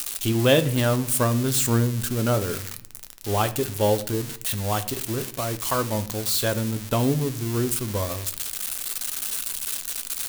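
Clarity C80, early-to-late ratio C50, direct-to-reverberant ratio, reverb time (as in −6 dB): 19.0 dB, 16.0 dB, 10.0 dB, 0.65 s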